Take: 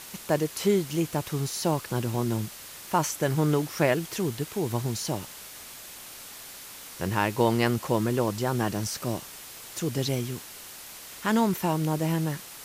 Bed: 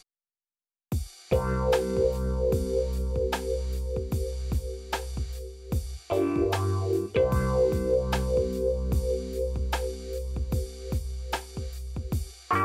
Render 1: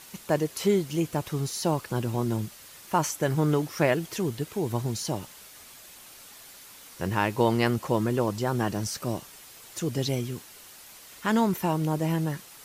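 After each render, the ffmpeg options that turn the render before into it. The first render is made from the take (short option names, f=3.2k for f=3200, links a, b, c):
-af "afftdn=nr=6:nf=-44"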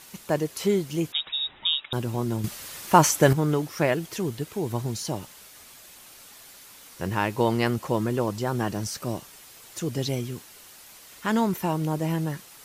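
-filter_complex "[0:a]asettb=1/sr,asplit=3[a][b][c];[a]atrim=end=1.124[d];[b]atrim=start=1.12:end=1.93,asetpts=PTS-STARTPTS,afade=t=in:d=0.004:c=qsin,afade=t=out:st=0.806:d=0.004:c=qsin,lowpass=f=3.3k:t=q:w=0.5098,lowpass=f=3.3k:t=q:w=0.6013,lowpass=f=3.3k:t=q:w=0.9,lowpass=f=3.3k:t=q:w=2.563,afreqshift=-3900[e];[c]atrim=start=1.926[f];[d][e]acrossfade=d=0.004:c1=hsin:c2=qsin[g];[g][f]acrossfade=d=0.004:c1=qsin:c2=hsin,asplit=3[h][i][j];[h]atrim=end=2.442[k];[i]atrim=start=2.438:end=3.332,asetpts=PTS-STARTPTS,volume=8.5dB[l];[j]atrim=start=3.328[m];[k][l]acrossfade=d=0.004:c1=hsin:c2=hsin[n];[n][m]acrossfade=d=0.004:c1=hsin:c2=hsin"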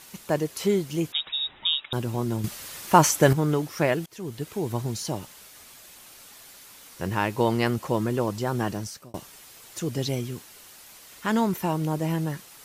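-filter_complex "[0:a]asplit=3[a][b][c];[a]atrim=end=4.06,asetpts=PTS-STARTPTS,afade=t=out:st=4.056:d=0.004:c=hsin:silence=0.0749894[d];[b]atrim=start=4.06:end=9.14,asetpts=PTS-STARTPTS,afade=t=in:d=0.42:silence=0.0749894,afade=t=out:st=4.64:d=0.44[e];[c]atrim=start=9.14,asetpts=PTS-STARTPTS,afade=t=in:d=0.004:c=hsin[f];[d][e][f]concat=n=3:v=0:a=1"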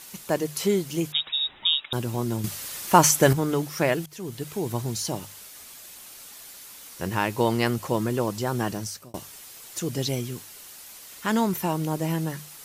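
-af "highshelf=f=4.3k:g=5.5,bandreject=f=50:t=h:w=6,bandreject=f=100:t=h:w=6,bandreject=f=150:t=h:w=6"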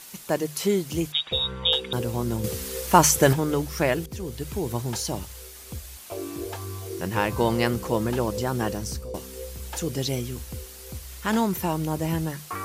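-filter_complex "[1:a]volume=-8.5dB[a];[0:a][a]amix=inputs=2:normalize=0"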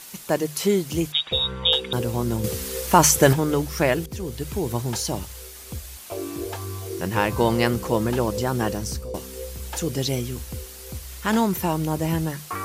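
-af "volume=2.5dB,alimiter=limit=-2dB:level=0:latency=1"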